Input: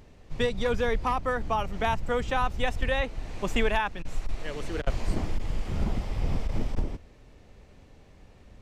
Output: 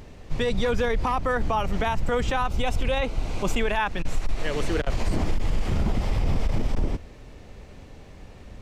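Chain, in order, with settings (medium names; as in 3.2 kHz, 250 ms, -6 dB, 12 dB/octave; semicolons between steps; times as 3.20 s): 2.48–3.60 s: band-stop 1.8 kHz, Q 5.2; peak limiter -23.5 dBFS, peak gain reduction 10.5 dB; trim +8.5 dB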